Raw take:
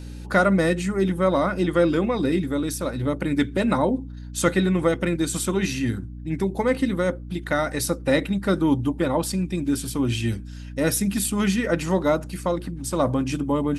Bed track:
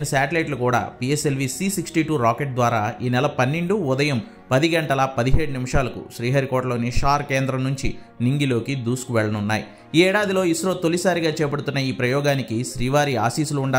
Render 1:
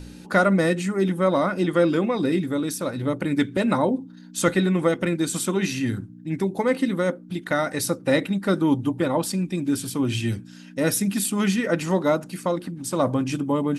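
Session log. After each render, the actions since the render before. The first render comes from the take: de-hum 60 Hz, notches 2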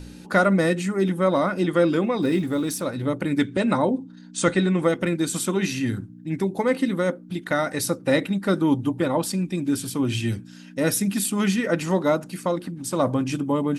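2.22–2.81 s: companding laws mixed up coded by mu; 3.45–4.82 s: steep low-pass 9.7 kHz 96 dB/octave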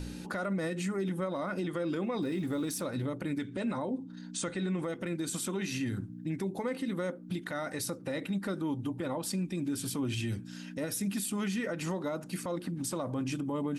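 compression 2.5:1, threshold -31 dBFS, peak gain reduction 12 dB; peak limiter -25.5 dBFS, peak gain reduction 10 dB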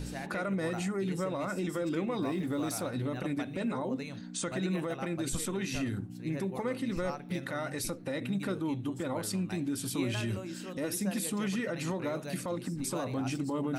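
add bed track -22.5 dB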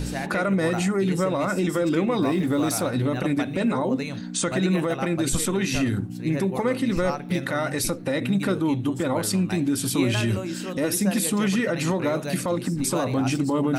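trim +10 dB

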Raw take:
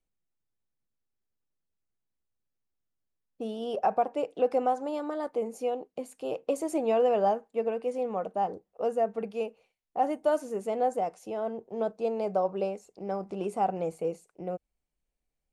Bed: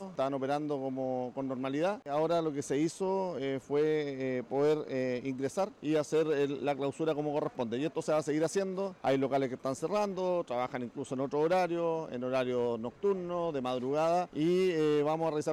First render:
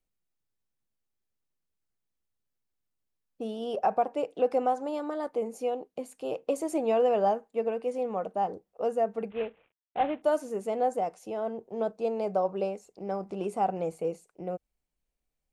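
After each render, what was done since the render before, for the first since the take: 9.30–10.22 s: CVSD coder 16 kbps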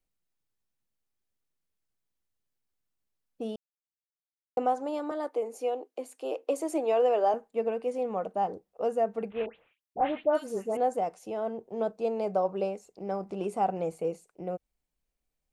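3.56–4.57 s: mute; 5.11–7.34 s: steep high-pass 270 Hz; 9.46–10.77 s: phase dispersion highs, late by 112 ms, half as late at 2.1 kHz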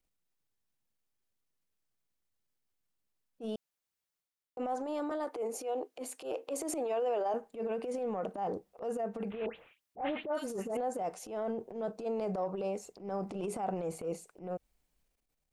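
compression 3:1, threshold -31 dBFS, peak gain reduction 8 dB; transient shaper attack -12 dB, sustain +7 dB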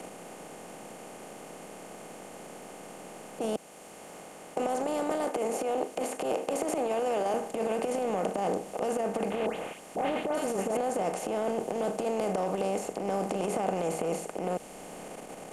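spectral levelling over time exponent 0.4; three bands compressed up and down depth 40%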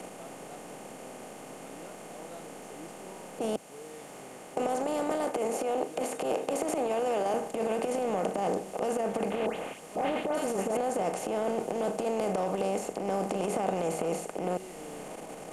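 add bed -18.5 dB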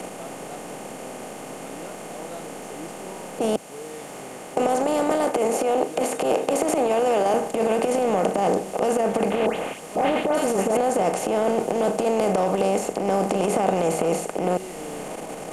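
trim +8.5 dB

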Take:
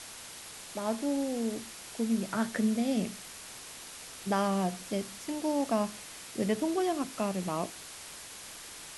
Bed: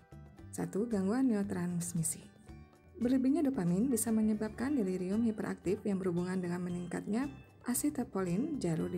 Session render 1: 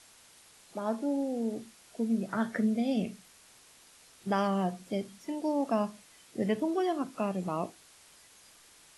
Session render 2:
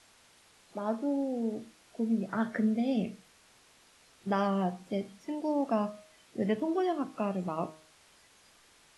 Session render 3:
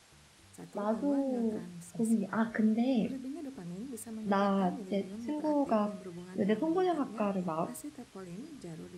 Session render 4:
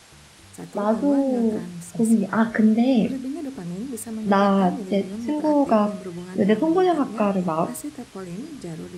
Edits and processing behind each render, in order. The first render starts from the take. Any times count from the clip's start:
noise print and reduce 12 dB
treble shelf 6.4 kHz -10.5 dB; de-hum 156.6 Hz, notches 32
add bed -11 dB
trim +11 dB

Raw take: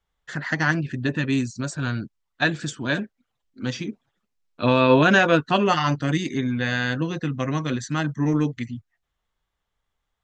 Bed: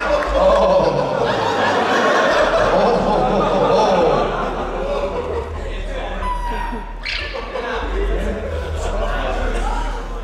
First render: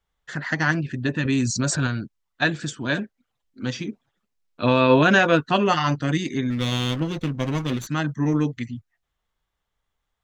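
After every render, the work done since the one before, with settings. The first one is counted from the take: 1.25–1.87 s: level flattener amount 70%; 6.50–7.87 s: comb filter that takes the minimum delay 0.3 ms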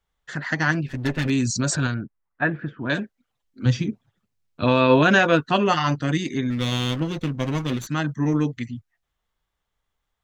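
0.88–1.30 s: comb filter that takes the minimum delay 7.5 ms; 1.94–2.90 s: low-pass 2 kHz 24 dB/octave; 3.65–4.64 s: peaking EQ 110 Hz +14.5 dB 1.3 oct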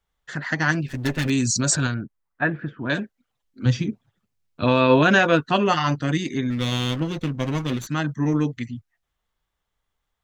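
0.68–1.89 s: treble shelf 6.9 kHz +11 dB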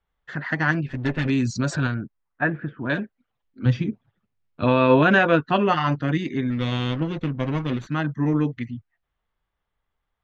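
low-pass 2.8 kHz 12 dB/octave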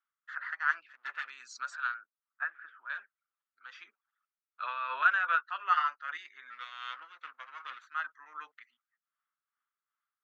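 ladder high-pass 1.2 kHz, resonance 70%; tremolo 2.6 Hz, depth 57%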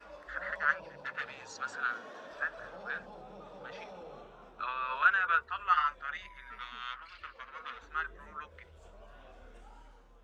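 add bed -33.5 dB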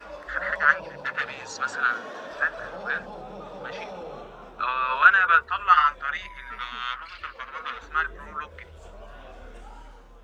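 trim +10 dB

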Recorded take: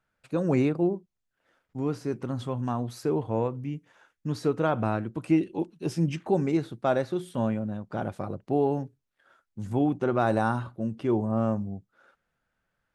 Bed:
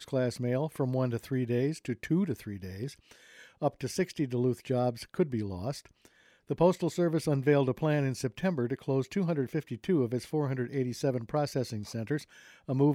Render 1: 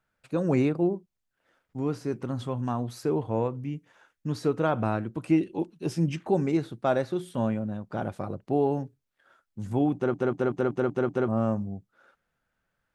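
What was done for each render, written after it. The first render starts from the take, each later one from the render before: 9.95 s: stutter in place 0.19 s, 7 plays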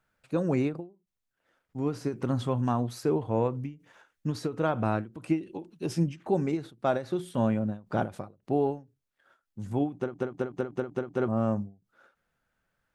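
gain riding within 4 dB 0.5 s; endings held to a fixed fall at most 190 dB/s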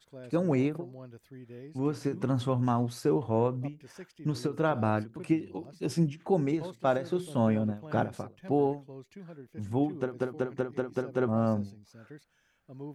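add bed -17 dB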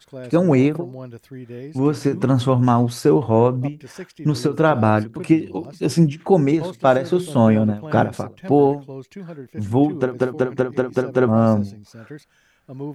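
trim +11.5 dB

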